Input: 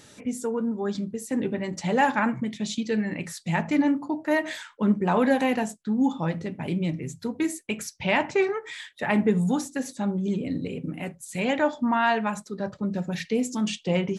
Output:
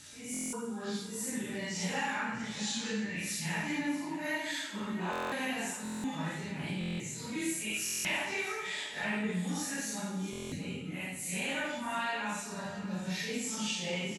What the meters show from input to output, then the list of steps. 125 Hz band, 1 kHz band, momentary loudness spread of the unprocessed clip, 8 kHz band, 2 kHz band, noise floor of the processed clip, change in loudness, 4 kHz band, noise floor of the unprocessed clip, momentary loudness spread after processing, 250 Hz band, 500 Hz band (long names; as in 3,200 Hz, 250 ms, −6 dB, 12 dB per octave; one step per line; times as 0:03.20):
−9.5 dB, −11.0 dB, 10 LU, +2.5 dB, −4.5 dB, −42 dBFS, −8.5 dB, −0.5 dB, −53 dBFS, 5 LU, −11.5 dB, −13.5 dB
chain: random phases in long frames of 200 ms
guitar amp tone stack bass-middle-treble 5-5-5
downward compressor 3 to 1, threshold −42 dBFS, peak gain reduction 8.5 dB
single-tap delay 643 ms −14.5 dB
dense smooth reverb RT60 1.1 s, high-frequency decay 0.95×, DRR 4 dB
buffer that repeats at 0:00.32/0:05.11/0:05.83/0:06.79/0:07.84/0:10.31, samples 1,024, times 8
level +8.5 dB